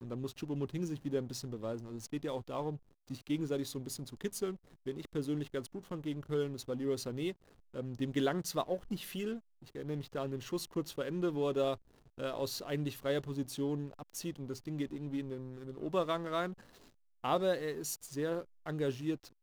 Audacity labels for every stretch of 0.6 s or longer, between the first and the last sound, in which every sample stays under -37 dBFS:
16.520000	17.240000	silence